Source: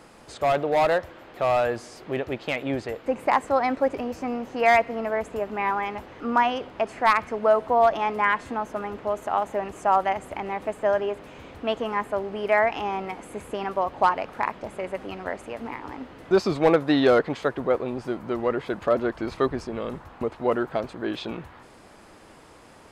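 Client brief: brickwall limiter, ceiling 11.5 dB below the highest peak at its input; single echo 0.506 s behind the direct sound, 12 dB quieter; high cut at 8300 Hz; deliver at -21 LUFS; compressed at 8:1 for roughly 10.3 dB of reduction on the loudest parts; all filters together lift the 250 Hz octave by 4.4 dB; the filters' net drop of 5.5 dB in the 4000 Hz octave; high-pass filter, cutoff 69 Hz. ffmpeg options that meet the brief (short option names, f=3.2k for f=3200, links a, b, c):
-af "highpass=69,lowpass=8.3k,equalizer=f=250:t=o:g=5.5,equalizer=f=4k:t=o:g=-7.5,acompressor=threshold=-23dB:ratio=8,alimiter=limit=-23dB:level=0:latency=1,aecho=1:1:506:0.251,volume=12dB"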